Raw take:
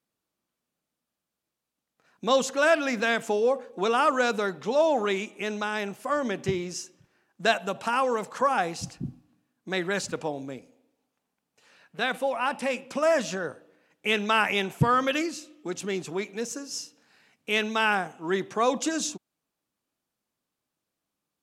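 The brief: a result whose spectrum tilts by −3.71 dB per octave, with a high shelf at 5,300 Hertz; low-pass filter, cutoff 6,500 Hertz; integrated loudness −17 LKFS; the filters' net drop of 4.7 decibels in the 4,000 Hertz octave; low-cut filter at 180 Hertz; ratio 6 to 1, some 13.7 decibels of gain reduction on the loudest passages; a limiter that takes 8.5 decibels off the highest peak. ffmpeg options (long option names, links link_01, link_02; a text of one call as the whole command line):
ffmpeg -i in.wav -af "highpass=180,lowpass=6500,equalizer=frequency=4000:width_type=o:gain=-8,highshelf=frequency=5300:gain=5,acompressor=threshold=-33dB:ratio=6,volume=22.5dB,alimiter=limit=-6dB:level=0:latency=1" out.wav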